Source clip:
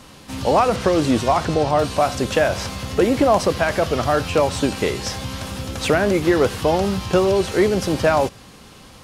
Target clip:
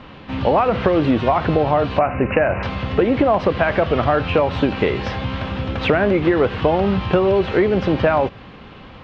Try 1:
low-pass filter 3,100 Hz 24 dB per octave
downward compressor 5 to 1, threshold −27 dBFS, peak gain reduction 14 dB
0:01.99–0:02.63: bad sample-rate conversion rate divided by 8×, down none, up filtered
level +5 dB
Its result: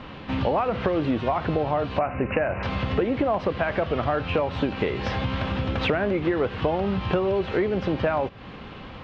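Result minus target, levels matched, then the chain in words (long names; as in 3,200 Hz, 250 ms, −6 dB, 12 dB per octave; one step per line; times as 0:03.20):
downward compressor: peak gain reduction +7.5 dB
low-pass filter 3,100 Hz 24 dB per octave
downward compressor 5 to 1, threshold −17.5 dBFS, peak gain reduction 6.5 dB
0:01.99–0:02.63: bad sample-rate conversion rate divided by 8×, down none, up filtered
level +5 dB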